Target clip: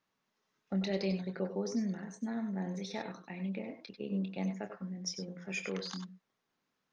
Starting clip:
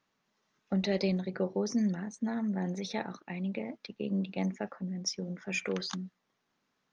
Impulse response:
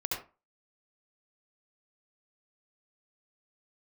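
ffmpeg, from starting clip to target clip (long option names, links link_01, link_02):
-filter_complex "[0:a]asplit=2[link_01][link_02];[1:a]atrim=start_sample=2205,atrim=end_sample=3528,adelay=26[link_03];[link_02][link_03]afir=irnorm=-1:irlink=0,volume=-8.5dB[link_04];[link_01][link_04]amix=inputs=2:normalize=0,volume=-5dB"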